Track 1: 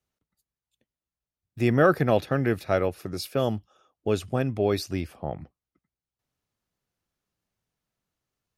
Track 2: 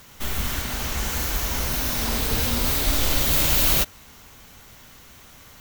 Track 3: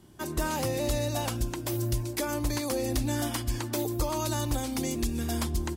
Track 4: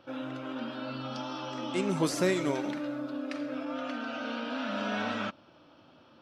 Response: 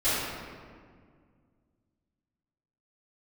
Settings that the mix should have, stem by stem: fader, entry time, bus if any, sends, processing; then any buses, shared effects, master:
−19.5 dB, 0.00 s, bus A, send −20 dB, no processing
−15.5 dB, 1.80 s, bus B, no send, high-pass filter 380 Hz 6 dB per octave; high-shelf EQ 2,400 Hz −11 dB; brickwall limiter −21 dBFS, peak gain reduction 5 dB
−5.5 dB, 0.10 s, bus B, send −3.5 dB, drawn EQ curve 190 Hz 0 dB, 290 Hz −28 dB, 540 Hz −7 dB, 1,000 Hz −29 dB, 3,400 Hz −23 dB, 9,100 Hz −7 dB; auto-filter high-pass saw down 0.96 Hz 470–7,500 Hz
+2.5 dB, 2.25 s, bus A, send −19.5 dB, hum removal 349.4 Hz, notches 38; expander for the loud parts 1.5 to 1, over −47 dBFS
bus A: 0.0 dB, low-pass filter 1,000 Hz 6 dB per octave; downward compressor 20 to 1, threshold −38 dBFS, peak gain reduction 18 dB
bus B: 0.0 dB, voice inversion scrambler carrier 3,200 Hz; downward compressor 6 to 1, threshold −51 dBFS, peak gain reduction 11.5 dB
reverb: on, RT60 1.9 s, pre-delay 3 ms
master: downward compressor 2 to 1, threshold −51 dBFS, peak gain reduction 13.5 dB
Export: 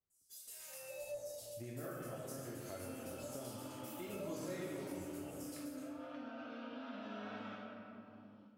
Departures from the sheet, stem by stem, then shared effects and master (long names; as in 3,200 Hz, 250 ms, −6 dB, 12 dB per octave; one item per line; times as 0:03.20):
stem 1 −19.5 dB → −11.0 dB
stem 2 −15.5 dB → −26.0 dB